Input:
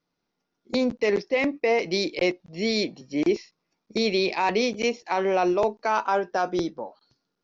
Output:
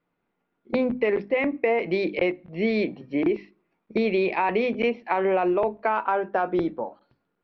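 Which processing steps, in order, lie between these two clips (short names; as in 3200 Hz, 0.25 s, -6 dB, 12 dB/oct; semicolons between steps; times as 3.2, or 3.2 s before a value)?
LPF 2700 Hz 24 dB/oct; notches 50/100/150/200/250/300 Hz; compressor, threshold -23 dBFS, peak gain reduction 6.5 dB; on a send: reverb RT60 0.50 s, pre-delay 4 ms, DRR 22.5 dB; on the sum: gain +4 dB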